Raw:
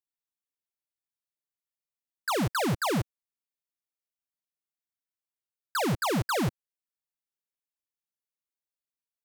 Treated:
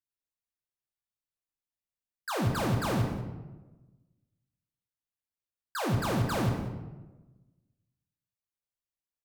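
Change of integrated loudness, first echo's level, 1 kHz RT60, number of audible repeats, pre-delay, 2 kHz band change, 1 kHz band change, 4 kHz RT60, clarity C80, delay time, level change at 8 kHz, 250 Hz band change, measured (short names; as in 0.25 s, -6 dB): -2.0 dB, -15.0 dB, 1.1 s, 1, 3 ms, -4.0 dB, -3.0 dB, 0.70 s, 6.0 dB, 0.193 s, -5.0 dB, -1.0 dB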